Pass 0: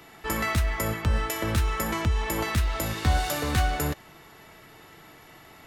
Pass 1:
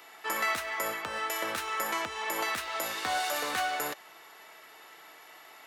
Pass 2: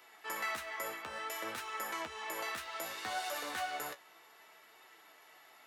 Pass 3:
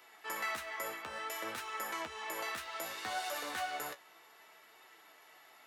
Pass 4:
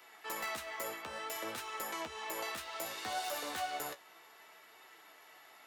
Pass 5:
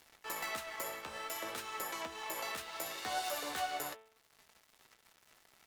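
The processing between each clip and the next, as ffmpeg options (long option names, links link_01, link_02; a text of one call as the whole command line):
ffmpeg -i in.wav -filter_complex "[0:a]highpass=590,acrossover=split=890|2200[link_01][link_02][link_03];[link_03]alimiter=level_in=1.5dB:limit=-24dB:level=0:latency=1:release=59,volume=-1.5dB[link_04];[link_01][link_02][link_04]amix=inputs=3:normalize=0" out.wav
ffmpeg -i in.wav -af "flanger=delay=7.5:depth=9.2:regen=40:speed=0.62:shape=triangular,volume=-4dB" out.wav
ffmpeg -i in.wav -af anull out.wav
ffmpeg -i in.wav -filter_complex "[0:a]acrossover=split=370|1200|2200[link_01][link_02][link_03][link_04];[link_03]acompressor=threshold=-56dB:ratio=6[link_05];[link_04]aeval=exprs='(mod(59.6*val(0)+1,2)-1)/59.6':channel_layout=same[link_06];[link_01][link_02][link_05][link_06]amix=inputs=4:normalize=0,volume=1.5dB" out.wav
ffmpeg -i in.wav -af "aeval=exprs='sgn(val(0))*max(abs(val(0))-0.002,0)':channel_layout=same,acompressor=mode=upward:threshold=-55dB:ratio=2.5,bandreject=frequency=110.3:width_type=h:width=4,bandreject=frequency=220.6:width_type=h:width=4,bandreject=frequency=330.9:width_type=h:width=4,bandreject=frequency=441.2:width_type=h:width=4,bandreject=frequency=551.5:width_type=h:width=4,bandreject=frequency=661.8:width_type=h:width=4,bandreject=frequency=772.1:width_type=h:width=4,bandreject=frequency=882.4:width_type=h:width=4,bandreject=frequency=992.7:width_type=h:width=4,bandreject=frequency=1103:width_type=h:width=4,bandreject=frequency=1213.3:width_type=h:width=4,bandreject=frequency=1323.6:width_type=h:width=4,bandreject=frequency=1433.9:width_type=h:width=4,bandreject=frequency=1544.2:width_type=h:width=4,bandreject=frequency=1654.5:width_type=h:width=4,bandreject=frequency=1764.8:width_type=h:width=4,bandreject=frequency=1875.1:width_type=h:width=4,bandreject=frequency=1985.4:width_type=h:width=4,bandreject=frequency=2095.7:width_type=h:width=4,bandreject=frequency=2206:width_type=h:width=4,bandreject=frequency=2316.3:width_type=h:width=4,bandreject=frequency=2426.6:width_type=h:width=4,bandreject=frequency=2536.9:width_type=h:width=4,bandreject=frequency=2647.2:width_type=h:width=4,bandreject=frequency=2757.5:width_type=h:width=4,bandreject=frequency=2867.8:width_type=h:width=4,bandreject=frequency=2978.1:width_type=h:width=4,bandreject=frequency=3088.4:width_type=h:width=4,bandreject=frequency=3198.7:width_type=h:width=4,bandreject=frequency=3309:width_type=h:width=4,bandreject=frequency=3419.3:width_type=h:width=4,bandreject=frequency=3529.6:width_type=h:width=4,bandreject=frequency=3639.9:width_type=h:width=4,bandreject=frequency=3750.2:width_type=h:width=4,bandreject=frequency=3860.5:width_type=h:width=4,volume=2dB" out.wav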